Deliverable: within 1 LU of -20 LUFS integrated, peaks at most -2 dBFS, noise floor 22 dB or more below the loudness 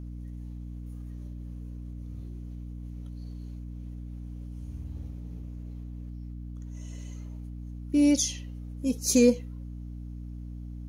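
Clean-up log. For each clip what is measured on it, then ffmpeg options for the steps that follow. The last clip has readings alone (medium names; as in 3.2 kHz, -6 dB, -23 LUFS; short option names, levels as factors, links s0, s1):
hum 60 Hz; highest harmonic 300 Hz; hum level -36 dBFS; loudness -32.5 LUFS; peak level -10.0 dBFS; loudness target -20.0 LUFS
-> -af "bandreject=f=60:t=h:w=4,bandreject=f=120:t=h:w=4,bandreject=f=180:t=h:w=4,bandreject=f=240:t=h:w=4,bandreject=f=300:t=h:w=4"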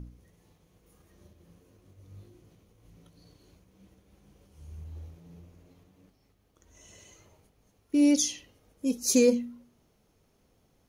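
hum not found; loudness -25.5 LUFS; peak level -11.5 dBFS; loudness target -20.0 LUFS
-> -af "volume=1.88"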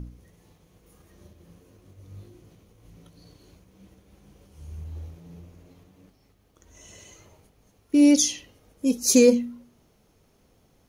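loudness -20.0 LUFS; peak level -6.0 dBFS; noise floor -63 dBFS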